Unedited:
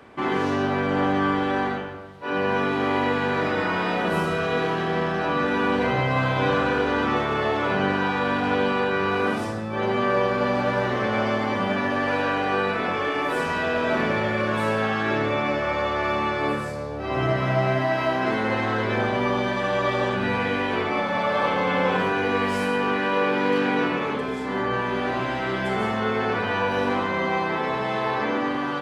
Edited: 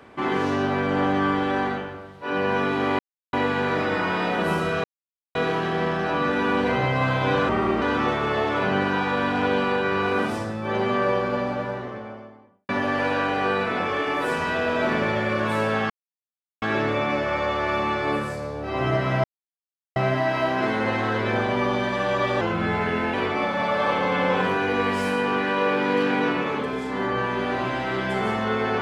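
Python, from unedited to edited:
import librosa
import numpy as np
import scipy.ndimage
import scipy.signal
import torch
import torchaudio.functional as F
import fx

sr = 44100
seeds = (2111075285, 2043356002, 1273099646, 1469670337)

y = fx.studio_fade_out(x, sr, start_s=9.89, length_s=1.88)
y = fx.edit(y, sr, fx.insert_silence(at_s=2.99, length_s=0.34),
    fx.insert_silence(at_s=4.5, length_s=0.51),
    fx.speed_span(start_s=6.64, length_s=0.26, speed=0.79),
    fx.insert_silence(at_s=14.98, length_s=0.72),
    fx.insert_silence(at_s=17.6, length_s=0.72),
    fx.speed_span(start_s=20.05, length_s=0.64, speed=0.88), tone=tone)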